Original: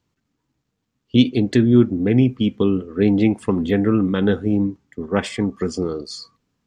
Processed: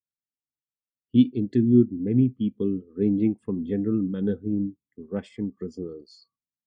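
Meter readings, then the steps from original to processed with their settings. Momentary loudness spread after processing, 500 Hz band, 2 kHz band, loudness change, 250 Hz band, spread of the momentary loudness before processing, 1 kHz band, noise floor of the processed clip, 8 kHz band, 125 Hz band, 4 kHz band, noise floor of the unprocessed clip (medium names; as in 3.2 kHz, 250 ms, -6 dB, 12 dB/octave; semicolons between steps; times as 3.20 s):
15 LU, -8.5 dB, under -15 dB, -6.0 dB, -5.5 dB, 10 LU, under -20 dB, under -85 dBFS, no reading, -7.0 dB, under -15 dB, -76 dBFS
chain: dynamic bell 1.1 kHz, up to -4 dB, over -33 dBFS, Q 0.84; spectral contrast expander 1.5:1; trim -4.5 dB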